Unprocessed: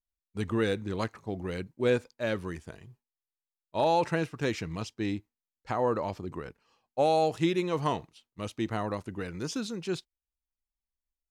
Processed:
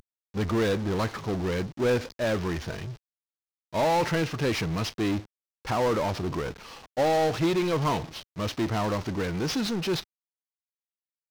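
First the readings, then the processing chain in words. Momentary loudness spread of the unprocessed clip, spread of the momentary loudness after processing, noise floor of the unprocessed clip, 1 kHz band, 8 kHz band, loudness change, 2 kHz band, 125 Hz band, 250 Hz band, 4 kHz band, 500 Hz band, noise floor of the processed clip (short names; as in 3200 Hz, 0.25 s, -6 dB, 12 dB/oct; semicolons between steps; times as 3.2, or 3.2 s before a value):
14 LU, 11 LU, under -85 dBFS, +2.5 dB, +6.5 dB, +3.5 dB, +4.5 dB, +6.0 dB, +4.0 dB, +6.5 dB, +2.5 dB, under -85 dBFS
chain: CVSD 32 kbps; power-law curve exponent 0.5; gain -1.5 dB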